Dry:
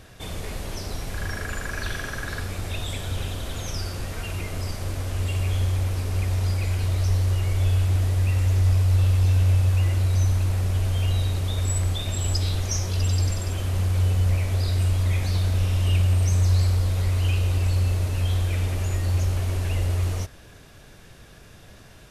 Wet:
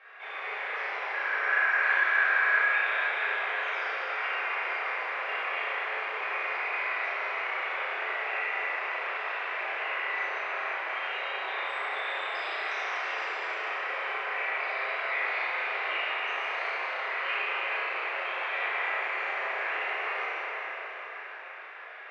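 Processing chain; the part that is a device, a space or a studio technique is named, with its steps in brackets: Chebyshev band-pass 380–2200 Hz, order 3; HPF 1300 Hz 12 dB/oct; bell 100 Hz -5 dB 0.35 oct; cathedral (reverb RT60 5.4 s, pre-delay 3 ms, DRR -10 dB); flutter echo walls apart 5.9 m, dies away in 0.41 s; gain +3 dB

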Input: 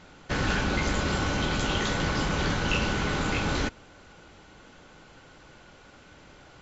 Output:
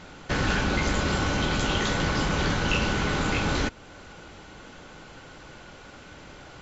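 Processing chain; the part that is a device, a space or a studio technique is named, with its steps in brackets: parallel compression (in parallel at 0 dB: compressor, threshold -38 dBFS, peak gain reduction 15 dB)

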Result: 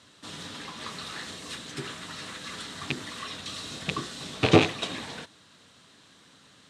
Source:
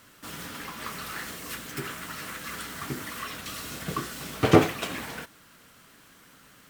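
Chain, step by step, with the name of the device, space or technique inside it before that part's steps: car door speaker with a rattle (rattling part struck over -29 dBFS, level -11 dBFS; speaker cabinet 90–8600 Hz, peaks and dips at 92 Hz +5 dB, 1400 Hz -5 dB, 2200 Hz -3 dB, 3800 Hz +9 dB); gain -1 dB

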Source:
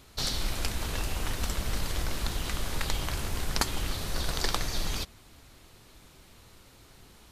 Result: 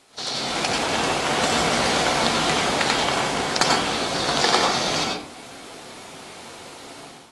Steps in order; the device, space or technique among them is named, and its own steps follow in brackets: filmed off a television (BPF 280–8000 Hz; bell 740 Hz +6.5 dB 0.26 oct; reverb RT60 0.60 s, pre-delay 84 ms, DRR -1.5 dB; white noise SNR 25 dB; AGC gain up to 12.5 dB; AAC 32 kbps 24000 Hz)

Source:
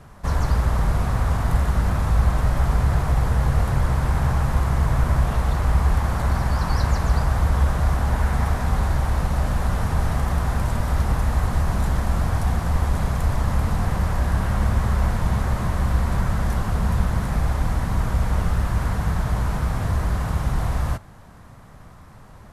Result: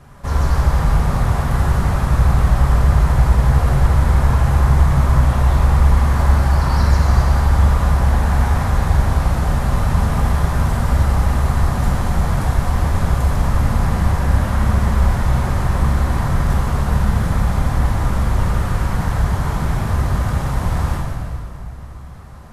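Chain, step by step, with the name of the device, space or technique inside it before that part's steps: stairwell (reverb RT60 2.4 s, pre-delay 4 ms, DRR -3 dB)

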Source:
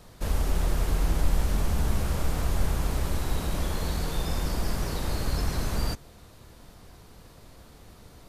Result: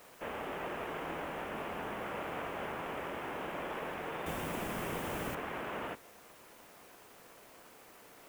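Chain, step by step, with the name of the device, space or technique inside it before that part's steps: army field radio (BPF 380–2900 Hz; CVSD 16 kbps; white noise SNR 20 dB); 4.26–5.35 tone controls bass +10 dB, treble +13 dB; gain -1 dB

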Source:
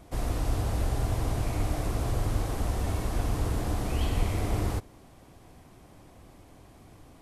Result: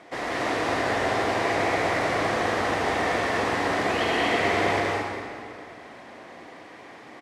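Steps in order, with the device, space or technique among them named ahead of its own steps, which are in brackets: station announcement (BPF 370–4700 Hz; bell 1900 Hz +10 dB 0.46 oct; loudspeakers at several distances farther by 44 m -9 dB, 66 m -3 dB, 79 m -4 dB; reverb RT60 2.5 s, pre-delay 64 ms, DRR 2.5 dB); gain +7.5 dB

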